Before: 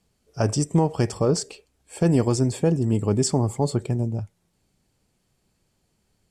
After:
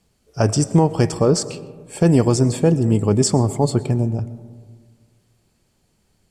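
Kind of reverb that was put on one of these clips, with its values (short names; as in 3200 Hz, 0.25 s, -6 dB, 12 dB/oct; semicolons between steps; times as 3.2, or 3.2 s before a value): digital reverb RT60 1.7 s, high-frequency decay 0.3×, pre-delay 75 ms, DRR 16 dB; gain +5 dB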